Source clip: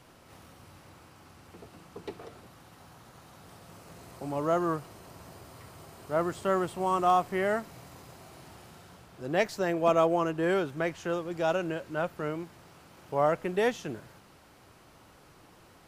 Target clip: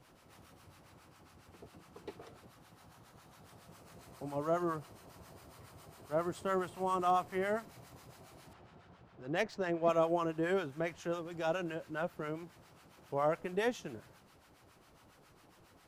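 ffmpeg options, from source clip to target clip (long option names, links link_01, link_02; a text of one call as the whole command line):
ffmpeg -i in.wav -filter_complex "[0:a]acrossover=split=850[link_01][link_02];[link_01]aeval=exprs='val(0)*(1-0.7/2+0.7/2*cos(2*PI*7.3*n/s))':channel_layout=same[link_03];[link_02]aeval=exprs='val(0)*(1-0.7/2-0.7/2*cos(2*PI*7.3*n/s))':channel_layout=same[link_04];[link_03][link_04]amix=inputs=2:normalize=0,asettb=1/sr,asplit=3[link_05][link_06][link_07];[link_05]atrim=end=8.534[link_08];[link_06]atrim=start=8.53:end=9.89,asetpts=PTS-STARTPTS,afade=type=in:duration=0.004:curve=qsin,afade=type=out:start_time=1.356:duration=0.004:curve=qsin,adynamicsmooth=sensitivity=7:basefreq=3400[link_09];[link_07]atrim=start=9.886[link_10];[link_08][link_09]acrossfade=duration=0.004:curve1=hsin:curve2=qsin[link_11];[link_11][link_10]acrossfade=duration=0.004:curve1=qsin:curve2=hsin,volume=-3dB" out.wav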